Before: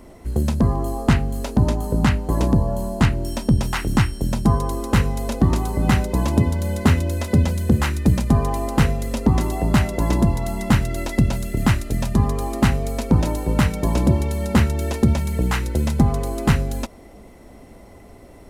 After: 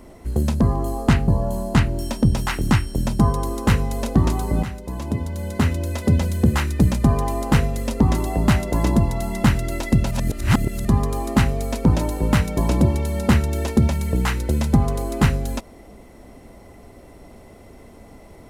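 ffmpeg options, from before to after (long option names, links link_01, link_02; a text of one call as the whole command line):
ffmpeg -i in.wav -filter_complex "[0:a]asplit=5[link_01][link_02][link_03][link_04][link_05];[link_01]atrim=end=1.282[link_06];[link_02]atrim=start=2.538:end=5.89,asetpts=PTS-STARTPTS,afade=type=out:start_time=3.348:duration=0.004:curve=hsin:silence=0.199526[link_07];[link_03]atrim=start=5.89:end=11.372,asetpts=PTS-STARTPTS,afade=type=in:duration=1.66:silence=0.199526[link_08];[link_04]atrim=start=11.368:end=12.112,asetpts=PTS-STARTPTS,areverse[link_09];[link_05]atrim=start=12.108[link_10];[link_07][link_08]concat=n=2:v=0:a=1[link_11];[link_06][link_11]acrossfade=duration=0.004:curve1=hsin:curve2=hsin[link_12];[link_12][link_09]acrossfade=duration=0.004:curve1=hsin:curve2=hsin[link_13];[link_13][link_10]acrossfade=duration=0.004:curve1=hsin:curve2=hsin" out.wav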